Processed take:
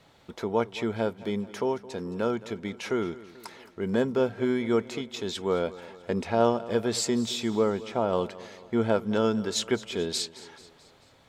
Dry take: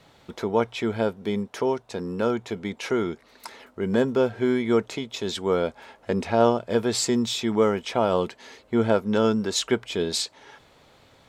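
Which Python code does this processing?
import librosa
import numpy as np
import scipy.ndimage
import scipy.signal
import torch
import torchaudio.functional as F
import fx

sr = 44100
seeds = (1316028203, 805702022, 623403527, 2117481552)

p1 = fx.high_shelf(x, sr, hz=2200.0, db=-10.0, at=(7.5, 8.13))
p2 = p1 + fx.echo_feedback(p1, sr, ms=218, feedback_pct=53, wet_db=-18.0, dry=0)
y = p2 * librosa.db_to_amplitude(-3.5)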